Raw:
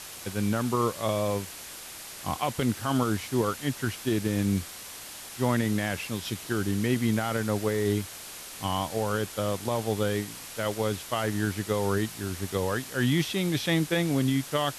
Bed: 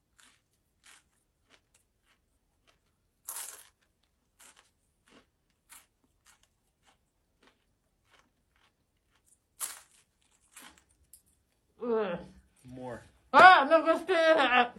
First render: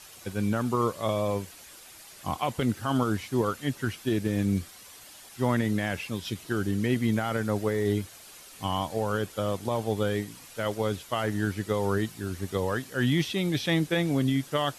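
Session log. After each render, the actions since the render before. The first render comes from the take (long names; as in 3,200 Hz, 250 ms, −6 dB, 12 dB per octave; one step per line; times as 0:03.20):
broadband denoise 9 dB, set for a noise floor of −42 dBFS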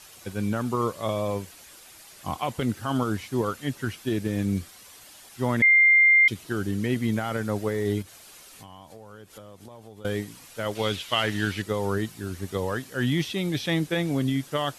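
0:05.62–0:06.28: beep over 2,100 Hz −13.5 dBFS
0:08.02–0:10.05: downward compressor, threshold −42 dBFS
0:10.75–0:11.62: parametric band 3,000 Hz +13 dB 1.6 octaves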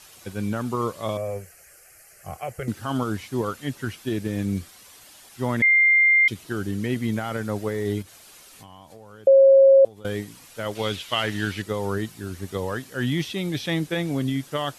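0:01.17–0:02.68: phaser with its sweep stopped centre 980 Hz, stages 6
0:09.27–0:09.85: beep over 542 Hz −9.5 dBFS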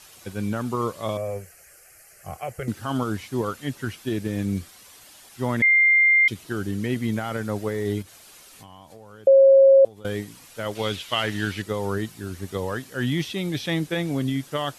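no processing that can be heard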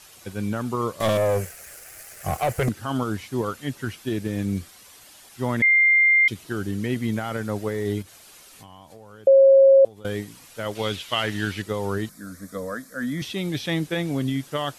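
0:01.00–0:02.69: leveller curve on the samples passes 3
0:12.09–0:13.22: phaser with its sweep stopped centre 570 Hz, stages 8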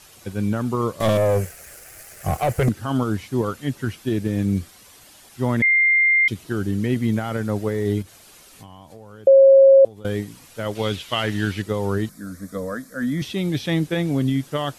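low-shelf EQ 480 Hz +5.5 dB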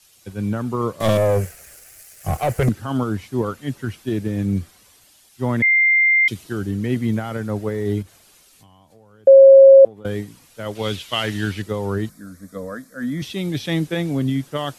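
multiband upward and downward expander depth 40%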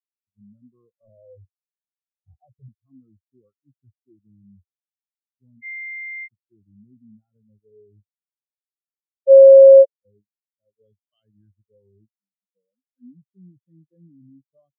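in parallel at +0.5 dB: compressor whose output falls as the input rises −24 dBFS, ratio −1
on the sum: every bin expanded away from the loudest bin 4 to 1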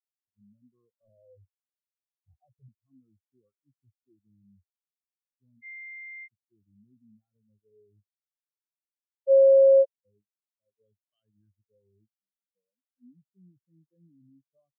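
level −10 dB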